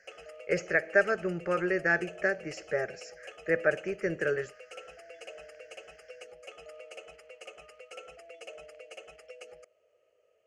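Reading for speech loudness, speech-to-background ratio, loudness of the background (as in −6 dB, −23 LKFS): −30.0 LKFS, 18.5 dB, −48.5 LKFS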